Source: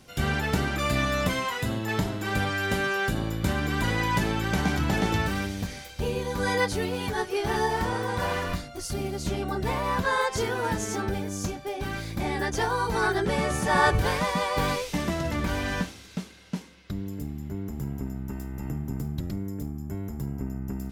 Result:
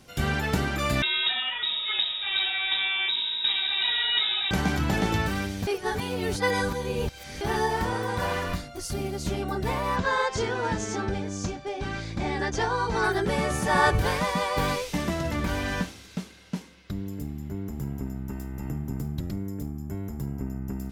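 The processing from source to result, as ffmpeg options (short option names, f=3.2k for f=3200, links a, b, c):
-filter_complex "[0:a]asettb=1/sr,asplit=3[a][b][c];[a]atrim=end=1.024[d];[b]atrim=start=1.02:end=4.51,asetpts=PTS-STARTPTS,afade=t=in:d=0.004:c=qsin,afade=t=out:st=3.486:d=0.004:c=qsin,lowpass=f=3.3k:t=q:w=0.5098,lowpass=f=3.3k:t=q:w=0.6013,lowpass=f=3.3k:t=q:w=0.9,lowpass=f=3.3k:t=q:w=2.563,afreqshift=-3900[e];[c]atrim=start=4.506[f];[d][e]acrossfade=d=0.004:c1=hsin:c2=qsin[g];[g][f]acrossfade=d=0.004:c1=qsin:c2=hsin,asettb=1/sr,asplit=3[h][i][j];[h]atrim=end=9.964[k];[i]atrim=start=9.96:end=13.04,asetpts=PTS-STARTPTS,afade=t=in:d=0.004:c=qsin,afade=t=out:st=3.076:d=0.004:c=qsin,lowpass=f=7.4k:w=0.5412,lowpass=f=7.4k:w=1.3066[l];[j]atrim=start=13.036[m];[k][l]acrossfade=d=0.004:c1=hsin:c2=qsin[n];[n][m]acrossfade=d=0.004:c1=qsin:c2=hsin,asplit=3[o][p][q];[o]atrim=end=5.672[r];[p]atrim=start=5.668:end=7.412,asetpts=PTS-STARTPTS,areverse[s];[q]atrim=start=7.408[t];[r][s]acrossfade=d=0.004:c1=hsin:c2=hsin[u];[u][t]acrossfade=d=0.004:c1=hsin:c2=hsin"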